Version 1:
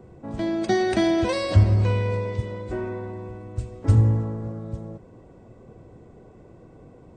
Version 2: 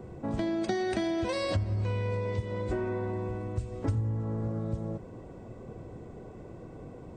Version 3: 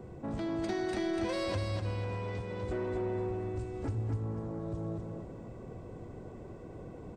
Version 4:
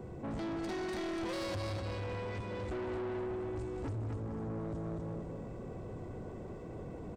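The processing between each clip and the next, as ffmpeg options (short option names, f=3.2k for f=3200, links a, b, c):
-af "acompressor=threshold=-31dB:ratio=6,volume=3dB"
-af "asoftclip=type=tanh:threshold=-27dB,aecho=1:1:248|496|744|992:0.631|0.215|0.0729|0.0248,volume=-2.5dB"
-filter_complex "[0:a]asplit=2[a][b];[b]adelay=186.6,volume=-7dB,highshelf=f=4k:g=-4.2[c];[a][c]amix=inputs=2:normalize=0,asoftclip=type=tanh:threshold=-37dB,volume=2dB"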